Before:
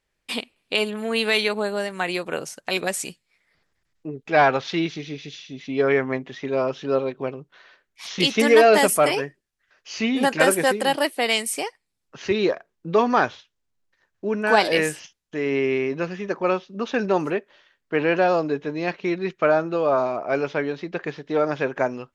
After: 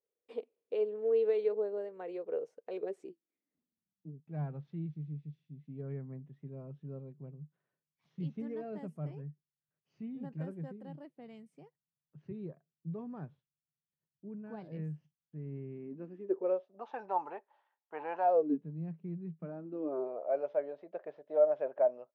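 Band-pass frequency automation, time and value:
band-pass, Q 8.6
2.75 s 460 Hz
4.29 s 150 Hz
15.7 s 150 Hz
16.88 s 850 Hz
18.24 s 850 Hz
18.67 s 160 Hz
19.38 s 160 Hz
20.33 s 610 Hz

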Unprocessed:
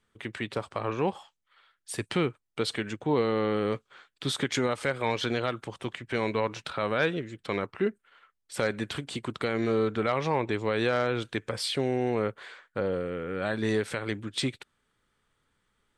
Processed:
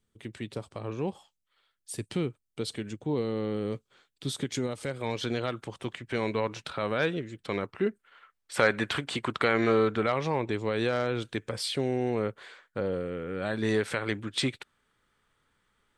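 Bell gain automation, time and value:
bell 1400 Hz 2.7 oct
4.74 s -12 dB
5.56 s -2.5 dB
7.8 s -2.5 dB
8.59 s +8 dB
9.69 s +8 dB
10.27 s -3.5 dB
13.43 s -3.5 dB
13.86 s +3 dB

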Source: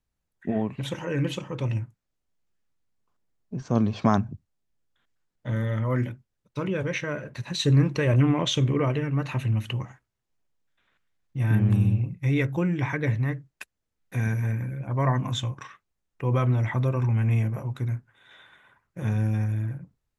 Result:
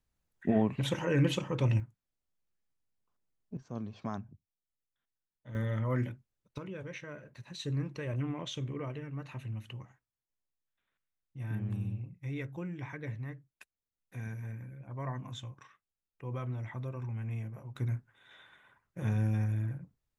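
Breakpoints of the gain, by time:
-0.5 dB
from 1.8 s -7.5 dB
from 3.57 s -17 dB
from 5.55 s -6 dB
from 6.58 s -14.5 dB
from 17.76 s -5 dB

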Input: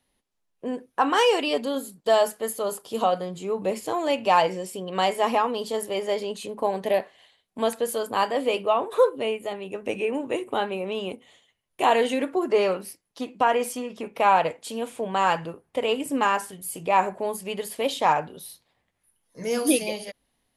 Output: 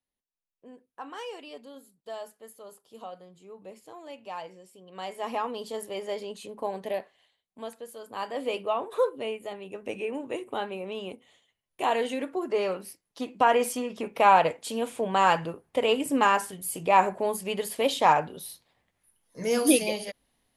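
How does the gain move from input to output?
4.78 s -19 dB
5.44 s -7 dB
6.77 s -7 dB
7.94 s -16.5 dB
8.44 s -6 dB
12.6 s -6 dB
13.57 s +0.5 dB

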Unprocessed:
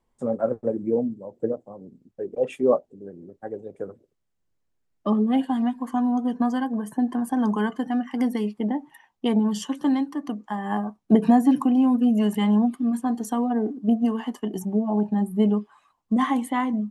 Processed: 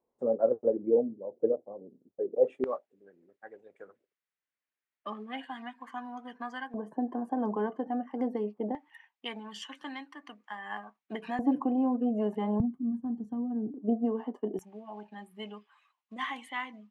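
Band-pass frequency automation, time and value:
band-pass, Q 1.6
490 Hz
from 2.64 s 2000 Hz
from 6.74 s 540 Hz
from 8.75 s 2200 Hz
from 11.39 s 550 Hz
from 12.6 s 120 Hz
from 13.74 s 460 Hz
from 14.59 s 2500 Hz

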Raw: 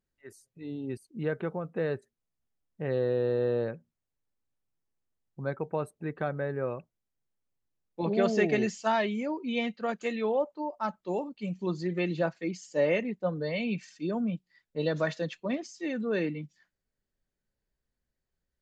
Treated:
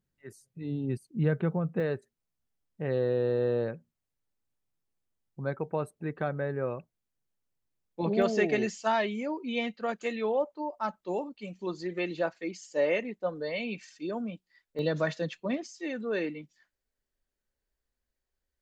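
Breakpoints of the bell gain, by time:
bell 150 Hz 1.1 oct
+10 dB
from 1.8 s +1 dB
from 8.22 s -5 dB
from 11.35 s -11.5 dB
from 14.79 s +0.5 dB
from 15.67 s -10.5 dB

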